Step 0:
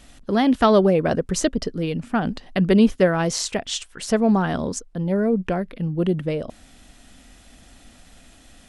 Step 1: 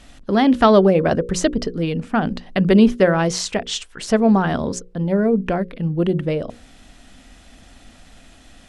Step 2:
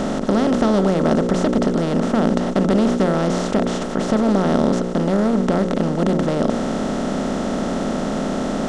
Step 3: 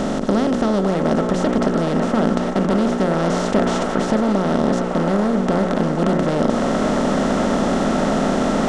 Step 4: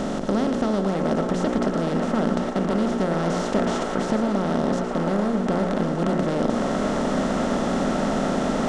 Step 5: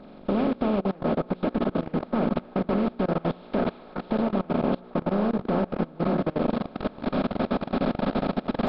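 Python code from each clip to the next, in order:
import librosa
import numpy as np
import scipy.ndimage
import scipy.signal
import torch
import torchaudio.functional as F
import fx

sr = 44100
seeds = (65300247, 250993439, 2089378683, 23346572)

y1 = fx.high_shelf(x, sr, hz=9900.0, db=-12.0)
y1 = fx.hum_notches(y1, sr, base_hz=60, count=9)
y1 = y1 * librosa.db_to_amplitude(3.5)
y2 = fx.bin_compress(y1, sr, power=0.2)
y2 = fx.low_shelf(y2, sr, hz=480.0, db=8.0)
y2 = y2 * librosa.db_to_amplitude(-15.0)
y3 = fx.echo_wet_bandpass(y2, sr, ms=556, feedback_pct=69, hz=1300.0, wet_db=-3.5)
y3 = fx.rider(y3, sr, range_db=10, speed_s=0.5)
y4 = y3 + 10.0 ** (-10.0 / 20.0) * np.pad(y3, (int(114 * sr / 1000.0), 0))[:len(y3)]
y4 = y4 * librosa.db_to_amplitude(-5.0)
y5 = fx.freq_compress(y4, sr, knee_hz=1200.0, ratio=1.5)
y5 = fx.level_steps(y5, sr, step_db=23)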